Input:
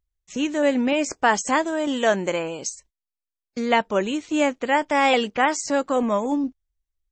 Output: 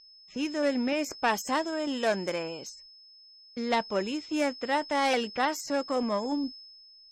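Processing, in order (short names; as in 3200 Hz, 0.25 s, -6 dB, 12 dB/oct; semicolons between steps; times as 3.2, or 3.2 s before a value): self-modulated delay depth 0.11 ms; whine 5200 Hz -36 dBFS; low-pass opened by the level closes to 2700 Hz, open at -18.5 dBFS; gain -7 dB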